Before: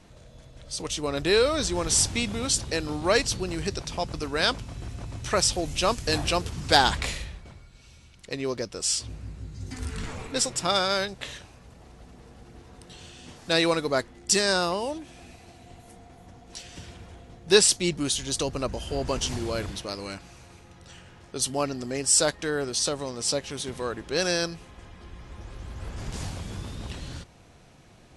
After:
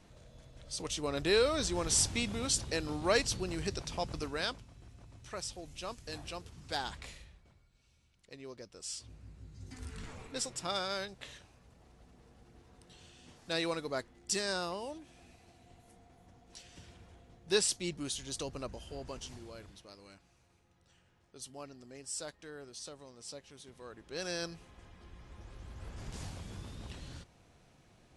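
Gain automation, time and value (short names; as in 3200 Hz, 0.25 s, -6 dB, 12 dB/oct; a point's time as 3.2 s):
4.23 s -6.5 dB
4.71 s -18 dB
8.56 s -18 dB
9.63 s -11.5 dB
18.58 s -11.5 dB
19.59 s -20 dB
23.74 s -20 dB
24.53 s -9.5 dB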